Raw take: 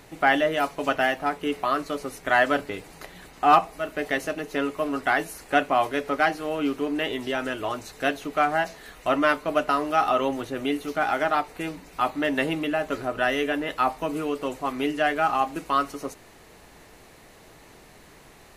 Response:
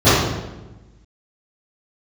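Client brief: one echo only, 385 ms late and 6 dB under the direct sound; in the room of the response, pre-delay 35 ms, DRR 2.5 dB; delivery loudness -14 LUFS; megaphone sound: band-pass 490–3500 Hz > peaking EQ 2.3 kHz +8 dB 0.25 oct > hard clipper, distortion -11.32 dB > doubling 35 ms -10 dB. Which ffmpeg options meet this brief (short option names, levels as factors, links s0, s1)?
-filter_complex "[0:a]aecho=1:1:385:0.501,asplit=2[s0][s1];[1:a]atrim=start_sample=2205,adelay=35[s2];[s1][s2]afir=irnorm=-1:irlink=0,volume=0.0282[s3];[s0][s3]amix=inputs=2:normalize=0,highpass=490,lowpass=3500,equalizer=f=2300:t=o:w=0.25:g=8,asoftclip=type=hard:threshold=0.126,asplit=2[s4][s5];[s5]adelay=35,volume=0.316[s6];[s4][s6]amix=inputs=2:normalize=0,volume=3.16"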